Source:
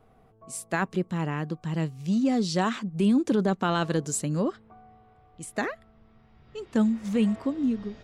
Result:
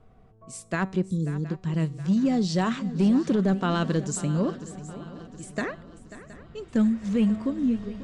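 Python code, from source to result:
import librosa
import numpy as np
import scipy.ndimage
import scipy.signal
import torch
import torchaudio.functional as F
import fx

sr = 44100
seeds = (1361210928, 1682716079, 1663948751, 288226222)

p1 = scipy.signal.sosfilt(scipy.signal.butter(4, 8600.0, 'lowpass', fs=sr, output='sos'), x)
p2 = fx.low_shelf(p1, sr, hz=140.0, db=9.5)
p3 = fx.notch(p2, sr, hz=820.0, q=12.0)
p4 = fx.comb_fb(p3, sr, f0_hz=190.0, decay_s=0.49, harmonics='all', damping=0.0, mix_pct=40)
p5 = 10.0 ** (-20.0 / 20.0) * (np.abs((p4 / 10.0 ** (-20.0 / 20.0) + 3.0) % 4.0 - 2.0) - 1.0)
p6 = p4 + F.gain(torch.from_numpy(p5), -8.0).numpy()
p7 = fx.spec_erase(p6, sr, start_s=1.1, length_s=0.38, low_hz=530.0, high_hz=3300.0)
y = p7 + fx.echo_swing(p7, sr, ms=719, ratio=3, feedback_pct=48, wet_db=-15.5, dry=0)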